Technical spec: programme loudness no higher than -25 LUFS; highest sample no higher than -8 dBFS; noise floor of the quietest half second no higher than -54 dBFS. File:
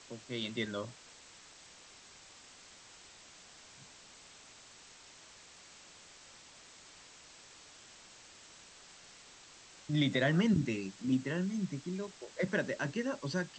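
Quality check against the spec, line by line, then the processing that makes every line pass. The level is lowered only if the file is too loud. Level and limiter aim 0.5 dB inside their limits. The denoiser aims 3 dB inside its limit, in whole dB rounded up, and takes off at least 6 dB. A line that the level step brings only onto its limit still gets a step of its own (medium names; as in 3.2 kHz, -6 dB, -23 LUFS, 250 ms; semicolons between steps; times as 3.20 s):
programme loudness -34.5 LUFS: pass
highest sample -18.0 dBFS: pass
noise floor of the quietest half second -57 dBFS: pass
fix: none needed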